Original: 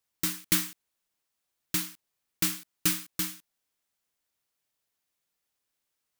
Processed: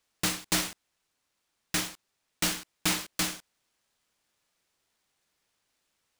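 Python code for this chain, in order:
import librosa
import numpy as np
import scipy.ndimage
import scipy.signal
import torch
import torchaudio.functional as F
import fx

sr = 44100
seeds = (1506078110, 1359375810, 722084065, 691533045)

p1 = fx.rider(x, sr, range_db=10, speed_s=0.5)
p2 = x + F.gain(torch.from_numpy(p1), -1.0).numpy()
p3 = fx.sample_hold(p2, sr, seeds[0], rate_hz=17000.0, jitter_pct=0)
p4 = 10.0 ** (-19.0 / 20.0) * np.tanh(p3 / 10.0 ** (-19.0 / 20.0))
y = F.gain(torch.from_numpy(p4), -1.5).numpy()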